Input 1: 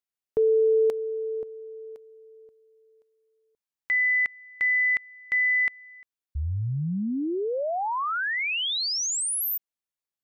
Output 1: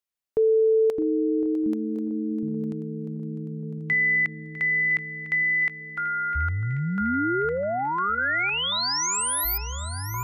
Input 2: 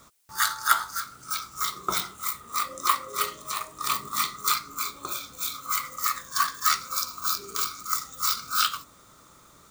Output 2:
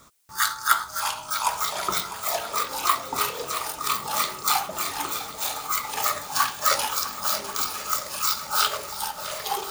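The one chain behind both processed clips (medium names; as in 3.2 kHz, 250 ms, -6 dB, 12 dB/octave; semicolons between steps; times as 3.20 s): ever faster or slower copies 461 ms, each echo -6 st, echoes 3, each echo -6 dB; shuffle delay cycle 1087 ms, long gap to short 1.5:1, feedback 52%, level -14 dB; trim +1 dB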